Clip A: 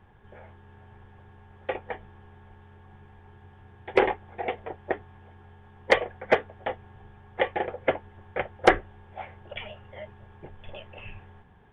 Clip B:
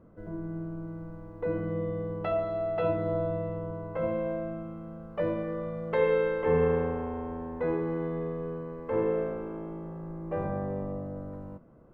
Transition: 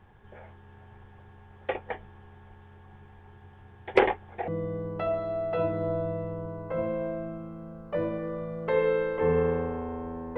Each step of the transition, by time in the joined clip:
clip A
0:04.48: continue with clip B from 0:01.73

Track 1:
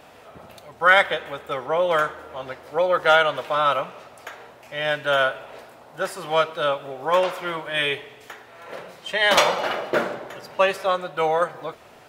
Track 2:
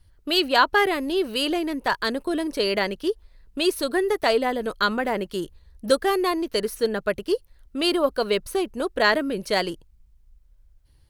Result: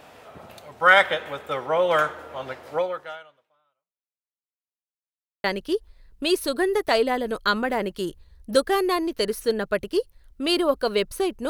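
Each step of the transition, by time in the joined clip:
track 1
0:02.75–0:04.50: fade out exponential
0:04.50–0:05.44: silence
0:05.44: continue with track 2 from 0:02.79

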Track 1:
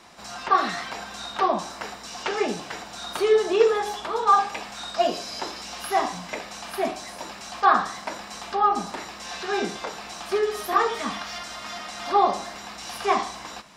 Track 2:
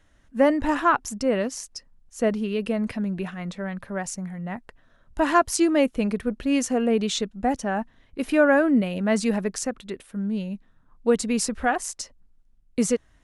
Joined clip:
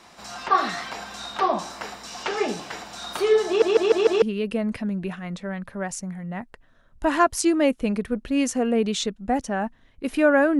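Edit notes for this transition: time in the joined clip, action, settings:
track 1
0:03.47: stutter in place 0.15 s, 5 plays
0:04.22: continue with track 2 from 0:02.37

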